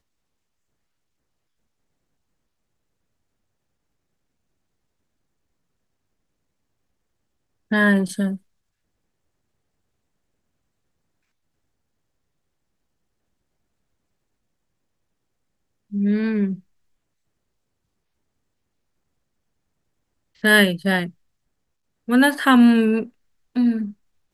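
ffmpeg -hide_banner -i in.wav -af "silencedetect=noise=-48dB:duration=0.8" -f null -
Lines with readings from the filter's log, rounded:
silence_start: 0.00
silence_end: 7.71 | silence_duration: 7.71
silence_start: 8.38
silence_end: 15.91 | silence_duration: 7.54
silence_start: 16.60
silence_end: 20.35 | silence_duration: 3.75
silence_start: 21.11
silence_end: 22.08 | silence_duration: 0.96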